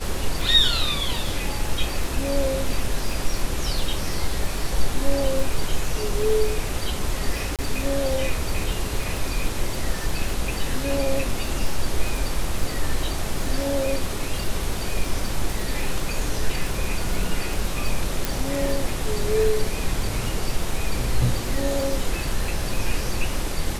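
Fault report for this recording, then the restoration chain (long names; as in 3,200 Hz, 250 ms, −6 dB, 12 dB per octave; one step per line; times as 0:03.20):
surface crackle 49 per second −27 dBFS
0:07.56–0:07.59: drop-out 27 ms
0:18.25: click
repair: click removal
repair the gap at 0:07.56, 27 ms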